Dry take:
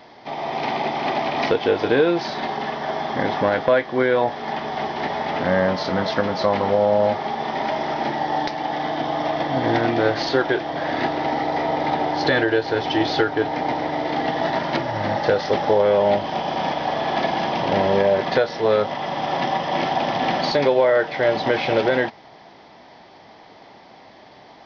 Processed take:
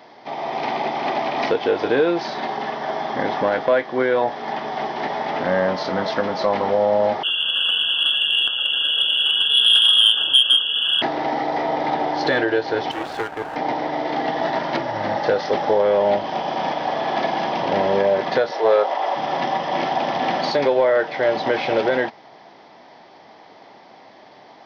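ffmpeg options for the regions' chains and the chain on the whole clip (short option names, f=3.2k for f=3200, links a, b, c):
-filter_complex "[0:a]asettb=1/sr,asplit=3[a][b][c];[a]atrim=end=7.234[d];[b]atrim=start=7.23:end=11.02,asetpts=PTS-STARTPTS,afade=t=in:d=0.004:c=qsin,afade=t=out:st=3.786:d=0.004:c=qsin,equalizer=f=220:t=o:w=2.9:g=11.5,lowpass=f=3.1k:t=q:w=0.5098,lowpass=f=3.1k:t=q:w=0.6013,lowpass=f=3.1k:t=q:w=0.9,lowpass=f=3.1k:t=q:w=2.563,afreqshift=-3600,asuperstop=centerf=2100:order=12:qfactor=2.1[e];[c]atrim=start=11.016[f];[d][e]acrossfade=d=0.004:c1=hsin:c2=qsin[g];[g][f]acrossfade=d=0.004:c1=qsin:c2=hsin,asettb=1/sr,asplit=3[h][i][j];[h]atrim=end=12.914[k];[i]atrim=start=12.91:end=13.56,asetpts=PTS-STARTPTS,afade=t=in:d=0.004:c=qsin,afade=t=out:st=0.646:d=0.004:c=qsin,bandpass=f=910:t=q:w=0.53,aeval=exprs='max(val(0),0)':c=same[l];[j]atrim=start=13.556[m];[k][l]acrossfade=d=0.004:c1=hsin:c2=qsin[n];[n][m]acrossfade=d=0.004:c1=qsin:c2=hsin,asettb=1/sr,asplit=3[o][p][q];[o]atrim=end=18.514[r];[p]atrim=start=18.51:end=19.16,asetpts=PTS-STARTPTS,afade=t=in:d=0.004:c=qsin,afade=t=out:st=0.646:d=0.004:c=qsin,highpass=f=330:w=0.5412,highpass=f=330:w=1.3066,equalizer=f=750:w=1.1:g=5.5[s];[q]atrim=start=19.156[t];[r][s]acrossfade=d=0.004:c1=hsin:c2=qsin[u];[u][t]acrossfade=d=0.004:c1=qsin:c2=hsin,highpass=f=250:p=1,equalizer=f=3.7k:w=0.52:g=-3,acontrast=38,volume=-4dB"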